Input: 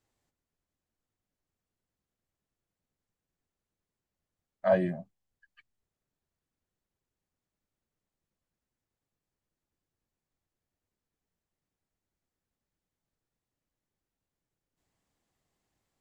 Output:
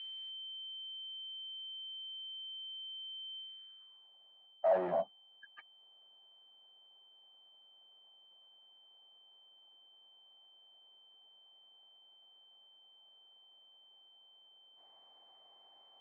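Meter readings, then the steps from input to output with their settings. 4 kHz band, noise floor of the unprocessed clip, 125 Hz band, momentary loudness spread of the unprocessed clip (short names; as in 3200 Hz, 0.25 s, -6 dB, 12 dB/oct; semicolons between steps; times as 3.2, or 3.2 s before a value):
n/a, under -85 dBFS, -17.0 dB, 11 LU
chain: reverse; compressor 4:1, threshold -34 dBFS, peak gain reduction 13 dB; reverse; whine 3100 Hz -58 dBFS; overdrive pedal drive 25 dB, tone 1100 Hz, clips at -23.5 dBFS; band-pass sweep 2700 Hz -> 790 Hz, 3.38–4.11; gain +7 dB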